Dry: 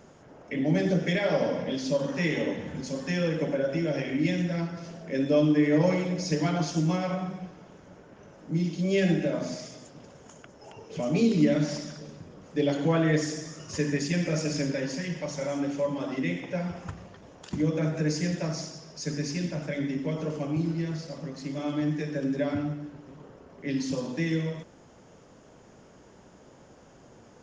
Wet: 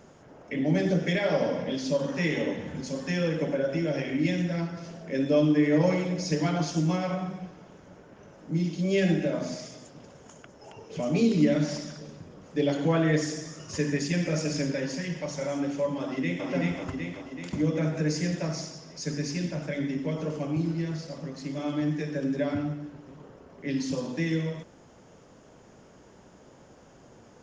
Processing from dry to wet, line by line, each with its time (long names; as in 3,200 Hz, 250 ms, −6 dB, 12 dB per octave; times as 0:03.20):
0:16.01–0:16.46: delay throw 380 ms, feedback 60%, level −1 dB